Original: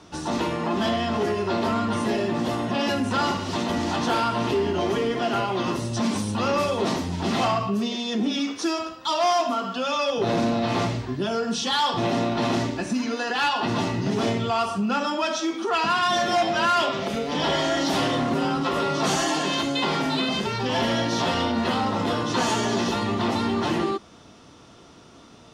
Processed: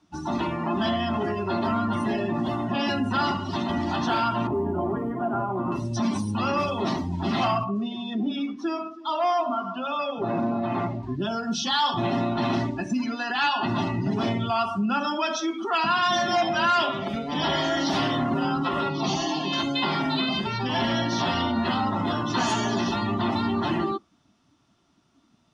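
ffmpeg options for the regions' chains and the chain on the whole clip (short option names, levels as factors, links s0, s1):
-filter_complex "[0:a]asettb=1/sr,asplit=3[s0][s1][s2];[s0]atrim=end=4.474[s3];[s1]atrim=start=4.47:end=5.72,asetpts=PTS-STARTPTS,afade=t=in:d=0.004:c=qsin,afade=t=out:st=1.246:d=0.004:c=qsin,lowpass=1300,acrusher=bits=9:mode=log:mix=0:aa=0.000001[s4];[s2]atrim=start=5.716[s5];[s3][s4]acrossfade=d=0.004:c1=hsin:c2=qsin[s6];[s6][s5]acrossfade=d=0.004:c1=qsin:c2=hsin,asettb=1/sr,asplit=3[s7][s8][s9];[s7]atrim=end=7.644[s10];[s8]atrim=start=7.64:end=11.03,asetpts=PTS-STARTPTS,afade=t=in:d=0.004:c=qsin,afade=t=out:st=3.386:d=0.004:c=qsin,lowpass=f=1900:p=1,lowshelf=f=99:g=-11.5,aecho=1:1:325|650|975:0.178|0.0551|0.0171,atrim=end_sample=149499[s11];[s9]atrim=start=11.026[s12];[s10][s11]acrossfade=d=0.004:c1=hsin:c2=qsin[s13];[s13][s12]acrossfade=d=0.004:c1=qsin:c2=hsin,asettb=1/sr,asplit=3[s14][s15][s16];[s14]atrim=end=18.894[s17];[s15]atrim=start=18.89:end=19.53,asetpts=PTS-STARTPTS,afade=t=in:d=0.004:c=qsin,afade=t=out:st=0.636:d=0.004:c=qsin,lowpass=f=5900:w=0.5412,lowpass=f=5900:w=1.3066,equalizer=f=1500:t=o:w=0.65:g=-11.5,bandreject=f=590:w=7.8[s18];[s16]atrim=start=19.526[s19];[s17][s18]acrossfade=d=0.004:c1=hsin:c2=qsin[s20];[s20][s19]acrossfade=d=0.004:c1=qsin:c2=hsin,equalizer=f=480:w=4.8:g=-14,afftdn=nr=17:nf=-34"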